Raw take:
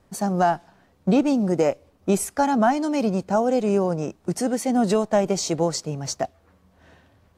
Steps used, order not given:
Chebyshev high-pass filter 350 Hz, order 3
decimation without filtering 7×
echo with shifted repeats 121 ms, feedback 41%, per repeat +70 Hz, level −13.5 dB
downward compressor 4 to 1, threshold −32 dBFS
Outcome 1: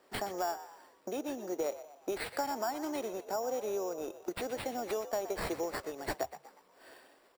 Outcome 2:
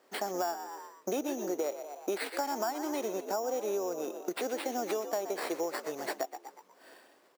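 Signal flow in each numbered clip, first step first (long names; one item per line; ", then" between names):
downward compressor, then Chebyshev high-pass filter, then decimation without filtering, then echo with shifted repeats
decimation without filtering, then echo with shifted repeats, then Chebyshev high-pass filter, then downward compressor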